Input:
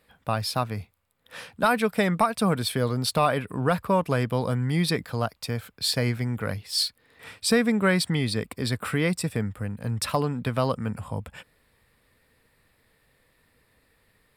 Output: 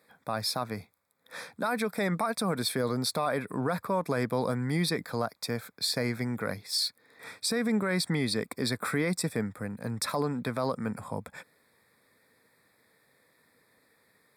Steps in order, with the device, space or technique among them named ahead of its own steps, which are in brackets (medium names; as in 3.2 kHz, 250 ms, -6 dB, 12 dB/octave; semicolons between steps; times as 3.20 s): PA system with an anti-feedback notch (high-pass 180 Hz 12 dB/octave; Butterworth band-stop 2.9 kHz, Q 2.9; peak limiter -19 dBFS, peak gain reduction 10.5 dB)